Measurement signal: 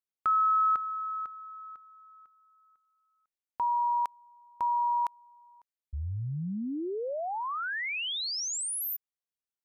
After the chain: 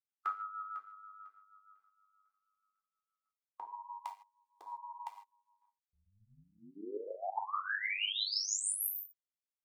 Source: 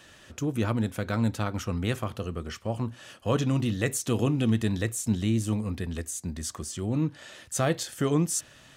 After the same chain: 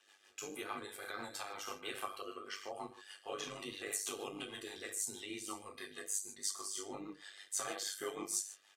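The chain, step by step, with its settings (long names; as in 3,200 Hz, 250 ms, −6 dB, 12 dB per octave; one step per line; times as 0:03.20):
comb filter 2.5 ms, depth 80%
noise reduction from a noise print of the clip's start 9 dB
brickwall limiter −21.5 dBFS
high-pass filter 710 Hz 12 dB per octave
reverb whose tail is shaped and stops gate 180 ms falling, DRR −0.5 dB
amplitude modulation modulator 100 Hz, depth 50%
rotating-speaker cabinet horn 6.3 Hz
level −2 dB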